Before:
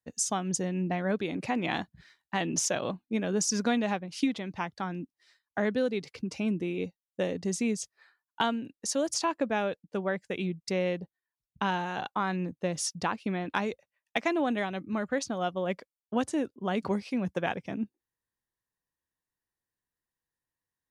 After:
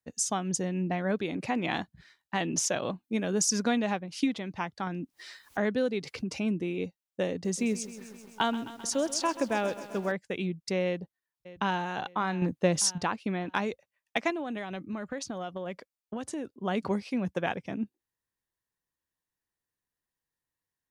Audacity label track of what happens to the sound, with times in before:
3.030000	3.580000	treble shelf 5.6 kHz -> 9.9 kHz +8 dB
4.870000	6.390000	upward compressor, threshold -30 dBFS
7.310000	10.120000	bit-crushed delay 131 ms, feedback 80%, word length 8-bit, level -15 dB
10.850000	11.860000	echo throw 600 ms, feedback 40%, level -16.5 dB
12.420000	12.980000	gain +6 dB
14.300000	16.590000	compression, threshold -31 dBFS

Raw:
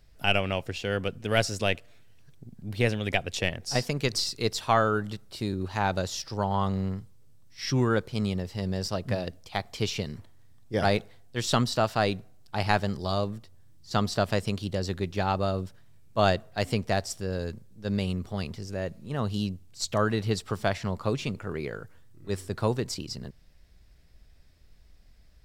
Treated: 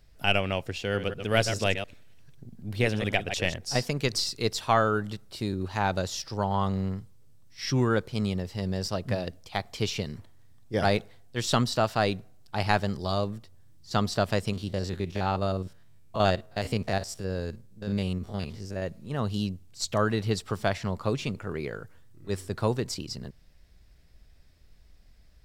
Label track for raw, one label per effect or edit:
0.840000	3.580000	chunks repeated in reverse 100 ms, level -8 dB
14.530000	18.820000	spectrogram pixelated in time every 50 ms

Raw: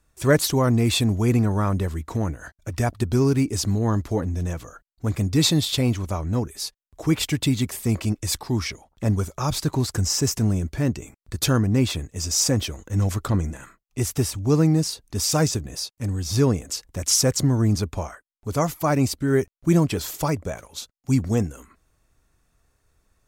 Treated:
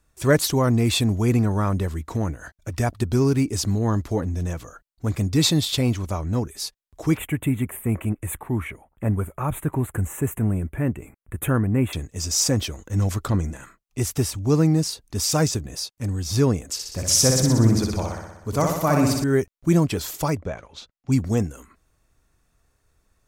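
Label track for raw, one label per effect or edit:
7.170000	11.930000	Chebyshev band-stop 2.2–10 kHz
16.730000	19.240000	flutter echo walls apart 10.6 m, dies away in 0.98 s
20.370000	21.120000	low-pass 3.6 kHz

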